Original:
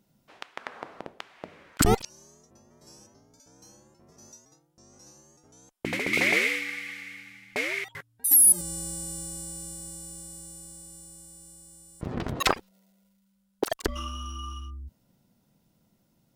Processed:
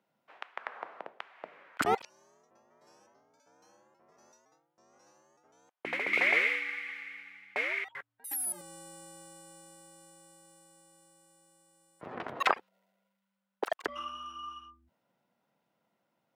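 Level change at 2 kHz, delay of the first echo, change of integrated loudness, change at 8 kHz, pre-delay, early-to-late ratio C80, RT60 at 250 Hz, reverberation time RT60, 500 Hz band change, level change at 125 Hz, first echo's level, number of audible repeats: -2.0 dB, no echo, -7.5 dB, -18.0 dB, no reverb, no reverb, no reverb, no reverb, -5.5 dB, -20.5 dB, no echo, no echo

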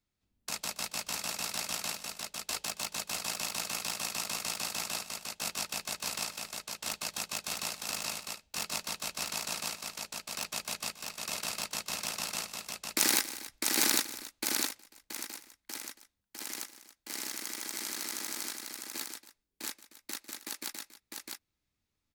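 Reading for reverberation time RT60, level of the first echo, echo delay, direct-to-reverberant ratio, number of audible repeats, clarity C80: no reverb, -17.0 dB, 149 ms, no reverb, 3, no reverb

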